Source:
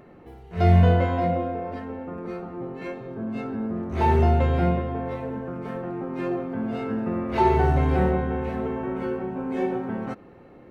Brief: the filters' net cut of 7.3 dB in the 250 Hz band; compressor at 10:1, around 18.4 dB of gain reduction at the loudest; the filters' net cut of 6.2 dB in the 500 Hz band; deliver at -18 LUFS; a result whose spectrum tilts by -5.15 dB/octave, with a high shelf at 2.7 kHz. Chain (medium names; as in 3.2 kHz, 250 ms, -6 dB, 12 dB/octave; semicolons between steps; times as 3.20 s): peaking EQ 250 Hz -9 dB; peaking EQ 500 Hz -5 dB; treble shelf 2.7 kHz -5.5 dB; compression 10:1, threshold -33 dBFS; trim +20.5 dB